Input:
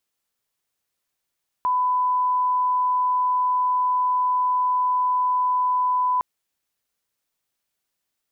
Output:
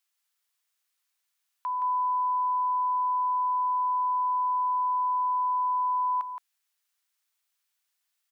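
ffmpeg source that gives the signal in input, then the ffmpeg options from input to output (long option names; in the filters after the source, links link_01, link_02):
-f lavfi -i "sine=frequency=1000:duration=4.56:sample_rate=44100,volume=0.06dB"
-af "highpass=1100,alimiter=level_in=2.5dB:limit=-24dB:level=0:latency=1:release=18,volume=-2.5dB,aecho=1:1:170:0.447"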